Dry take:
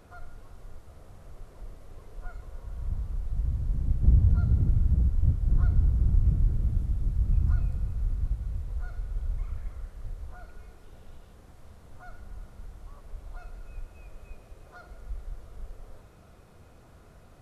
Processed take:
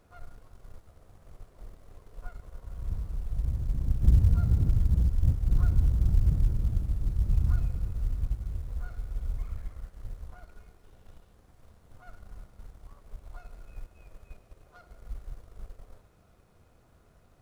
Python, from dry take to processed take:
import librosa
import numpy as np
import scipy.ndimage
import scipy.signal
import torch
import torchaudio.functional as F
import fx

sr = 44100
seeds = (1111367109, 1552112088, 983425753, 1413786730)

y = fx.law_mismatch(x, sr, coded='A')